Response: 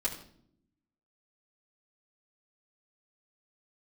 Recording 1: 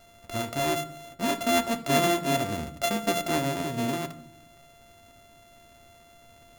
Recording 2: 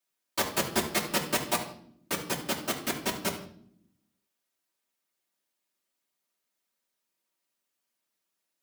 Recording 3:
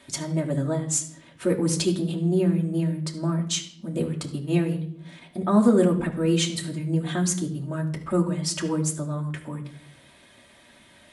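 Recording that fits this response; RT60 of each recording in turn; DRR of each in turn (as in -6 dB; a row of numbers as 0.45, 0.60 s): 2; 0.65, 0.65, 0.65 s; 6.5, -7.0, -0.5 dB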